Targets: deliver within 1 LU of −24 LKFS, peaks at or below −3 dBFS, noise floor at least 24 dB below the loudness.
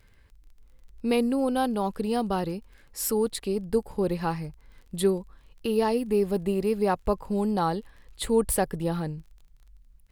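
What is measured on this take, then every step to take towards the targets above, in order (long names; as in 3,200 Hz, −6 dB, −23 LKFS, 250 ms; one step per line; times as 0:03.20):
crackle rate 21 per second; integrated loudness −27.5 LKFS; sample peak −10.5 dBFS; target loudness −24.0 LKFS
→ click removal
level +3.5 dB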